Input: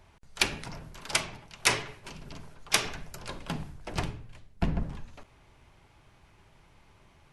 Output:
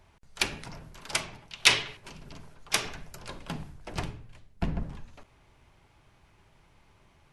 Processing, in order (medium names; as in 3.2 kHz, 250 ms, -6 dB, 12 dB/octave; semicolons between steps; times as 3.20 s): 1.51–1.97 s: peaking EQ 3.4 kHz +11.5 dB 1.3 oct; trim -2 dB